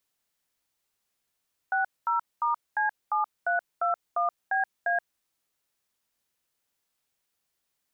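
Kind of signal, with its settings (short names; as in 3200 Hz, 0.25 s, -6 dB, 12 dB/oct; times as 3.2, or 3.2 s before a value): DTMF "60*C7321BA", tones 0.127 s, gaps 0.222 s, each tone -25.5 dBFS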